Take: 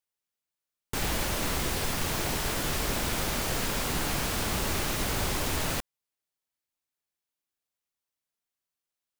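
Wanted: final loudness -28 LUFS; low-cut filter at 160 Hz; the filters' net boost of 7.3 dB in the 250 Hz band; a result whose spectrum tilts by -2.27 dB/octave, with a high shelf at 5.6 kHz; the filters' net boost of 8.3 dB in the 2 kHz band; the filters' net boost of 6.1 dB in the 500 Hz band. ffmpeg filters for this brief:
-af "highpass=160,equalizer=f=250:t=o:g=9,equalizer=f=500:t=o:g=4.5,equalizer=f=2000:t=o:g=9,highshelf=f=5600:g=7.5,volume=0.596"

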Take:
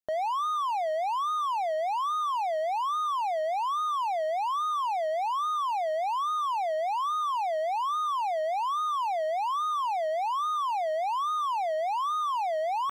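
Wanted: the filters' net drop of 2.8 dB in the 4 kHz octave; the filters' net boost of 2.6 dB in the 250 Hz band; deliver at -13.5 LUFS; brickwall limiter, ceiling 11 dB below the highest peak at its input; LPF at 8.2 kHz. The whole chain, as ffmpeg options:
-af "lowpass=8200,equalizer=f=250:t=o:g=3.5,equalizer=f=4000:t=o:g=-3.5,volume=17.8,alimiter=limit=0.335:level=0:latency=1"

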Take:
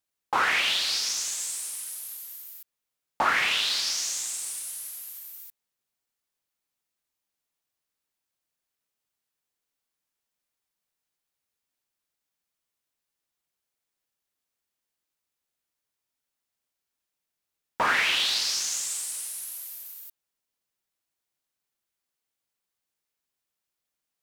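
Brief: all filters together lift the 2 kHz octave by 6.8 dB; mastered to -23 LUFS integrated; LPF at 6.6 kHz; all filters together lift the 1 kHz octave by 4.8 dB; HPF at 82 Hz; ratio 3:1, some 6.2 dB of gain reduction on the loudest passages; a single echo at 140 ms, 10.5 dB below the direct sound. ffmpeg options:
-af "highpass=82,lowpass=6600,equalizer=f=1000:t=o:g=3.5,equalizer=f=2000:t=o:g=7.5,acompressor=threshold=0.0794:ratio=3,aecho=1:1:140:0.299,volume=1.26"

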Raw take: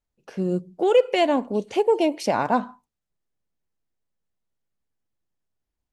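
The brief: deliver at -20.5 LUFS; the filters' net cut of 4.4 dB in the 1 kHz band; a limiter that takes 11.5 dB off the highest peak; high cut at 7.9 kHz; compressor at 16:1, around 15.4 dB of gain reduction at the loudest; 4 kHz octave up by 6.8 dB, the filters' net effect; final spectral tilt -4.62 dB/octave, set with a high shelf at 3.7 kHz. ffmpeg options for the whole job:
-af "lowpass=7900,equalizer=f=1000:t=o:g=-7,highshelf=f=3700:g=4.5,equalizer=f=4000:t=o:g=8,acompressor=threshold=0.0398:ratio=16,volume=8.91,alimiter=limit=0.299:level=0:latency=1"

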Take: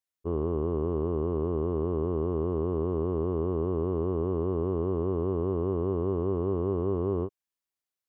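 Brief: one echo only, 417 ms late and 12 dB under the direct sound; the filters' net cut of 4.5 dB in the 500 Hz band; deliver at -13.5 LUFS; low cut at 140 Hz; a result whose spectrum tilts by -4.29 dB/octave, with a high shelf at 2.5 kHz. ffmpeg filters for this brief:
-af "highpass=140,equalizer=f=500:t=o:g=-6.5,highshelf=f=2500:g=5.5,aecho=1:1:417:0.251,volume=10"

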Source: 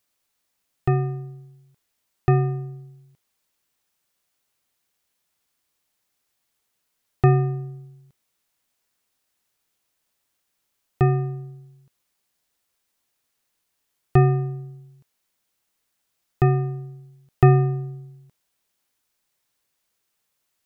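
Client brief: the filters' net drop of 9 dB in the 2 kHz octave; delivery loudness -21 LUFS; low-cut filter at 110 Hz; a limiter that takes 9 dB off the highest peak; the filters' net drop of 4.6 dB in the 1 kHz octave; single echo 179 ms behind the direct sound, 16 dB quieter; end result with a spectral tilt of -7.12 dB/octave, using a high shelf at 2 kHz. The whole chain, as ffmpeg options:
-af "highpass=110,equalizer=f=1000:t=o:g=-5.5,highshelf=f=2000:g=-3.5,equalizer=f=2000:t=o:g=-7,alimiter=limit=0.211:level=0:latency=1,aecho=1:1:179:0.158,volume=1.88"

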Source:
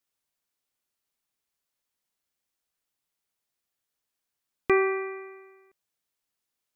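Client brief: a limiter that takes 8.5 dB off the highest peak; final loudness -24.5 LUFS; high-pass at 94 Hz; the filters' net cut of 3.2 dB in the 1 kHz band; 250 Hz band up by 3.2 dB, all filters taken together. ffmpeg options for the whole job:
-af "highpass=94,equalizer=f=250:t=o:g=8.5,equalizer=f=1000:t=o:g=-4.5,volume=1.58,alimiter=limit=0.211:level=0:latency=1"

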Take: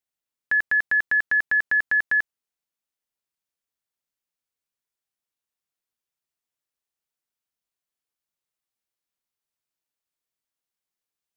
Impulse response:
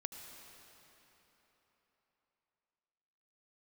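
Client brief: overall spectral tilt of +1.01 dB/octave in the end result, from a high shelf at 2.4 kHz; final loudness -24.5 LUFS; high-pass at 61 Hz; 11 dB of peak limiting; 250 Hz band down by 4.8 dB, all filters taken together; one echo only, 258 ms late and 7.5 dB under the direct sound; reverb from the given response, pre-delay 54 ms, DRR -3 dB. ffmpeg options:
-filter_complex "[0:a]highpass=61,equalizer=f=250:t=o:g=-6.5,highshelf=f=2400:g=-7,alimiter=level_in=1.78:limit=0.0631:level=0:latency=1,volume=0.562,aecho=1:1:258:0.422,asplit=2[s0][s1];[1:a]atrim=start_sample=2205,adelay=54[s2];[s1][s2]afir=irnorm=-1:irlink=0,volume=1.78[s3];[s0][s3]amix=inputs=2:normalize=0,volume=1.78"

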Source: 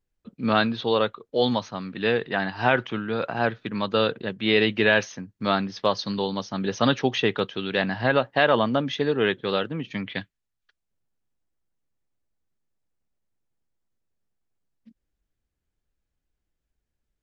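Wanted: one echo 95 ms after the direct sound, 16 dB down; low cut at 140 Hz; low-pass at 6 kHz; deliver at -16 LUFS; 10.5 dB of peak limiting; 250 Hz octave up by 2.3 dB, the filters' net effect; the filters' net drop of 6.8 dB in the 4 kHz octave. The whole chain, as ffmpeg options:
-af "highpass=140,lowpass=6000,equalizer=f=250:t=o:g=3.5,equalizer=f=4000:t=o:g=-8.5,alimiter=limit=0.141:level=0:latency=1,aecho=1:1:95:0.158,volume=4.22"

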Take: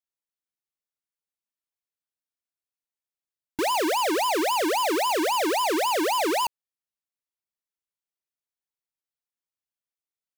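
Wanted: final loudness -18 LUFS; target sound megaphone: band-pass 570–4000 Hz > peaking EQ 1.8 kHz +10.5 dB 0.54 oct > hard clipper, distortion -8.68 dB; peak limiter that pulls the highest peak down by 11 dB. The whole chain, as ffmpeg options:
-af "alimiter=level_in=3.35:limit=0.0631:level=0:latency=1,volume=0.299,highpass=570,lowpass=4000,equalizer=f=1800:t=o:w=0.54:g=10.5,asoftclip=type=hard:threshold=0.015,volume=11.2"

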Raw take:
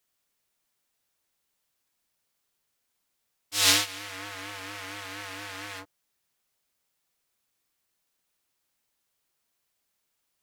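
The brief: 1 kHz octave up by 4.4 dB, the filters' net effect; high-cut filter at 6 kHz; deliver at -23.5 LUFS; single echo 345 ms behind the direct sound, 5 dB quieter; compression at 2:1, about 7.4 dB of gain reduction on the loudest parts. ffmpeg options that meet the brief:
-af "lowpass=6000,equalizer=f=1000:t=o:g=5.5,acompressor=threshold=0.0316:ratio=2,aecho=1:1:345:0.562,volume=3.16"

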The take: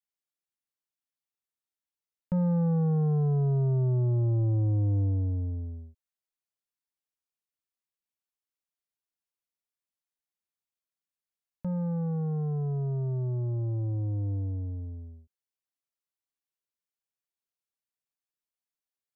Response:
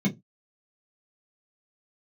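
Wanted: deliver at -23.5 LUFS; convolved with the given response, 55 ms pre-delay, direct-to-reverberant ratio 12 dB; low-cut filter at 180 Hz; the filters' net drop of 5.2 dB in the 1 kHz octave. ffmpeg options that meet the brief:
-filter_complex "[0:a]highpass=180,equalizer=f=1000:t=o:g=-7.5,asplit=2[s0][s1];[1:a]atrim=start_sample=2205,adelay=55[s2];[s1][s2]afir=irnorm=-1:irlink=0,volume=0.1[s3];[s0][s3]amix=inputs=2:normalize=0,volume=1.88"

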